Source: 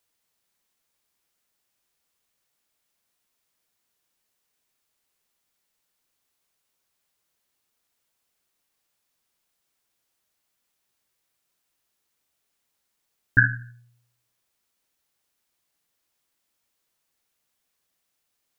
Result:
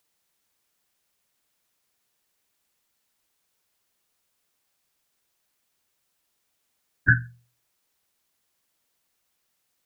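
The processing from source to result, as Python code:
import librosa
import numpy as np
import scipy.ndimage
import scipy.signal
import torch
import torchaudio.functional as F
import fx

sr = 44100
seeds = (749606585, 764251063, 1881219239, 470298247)

y = fx.stretch_vocoder_free(x, sr, factor=0.53)
y = y * librosa.db_to_amplitude(5.5)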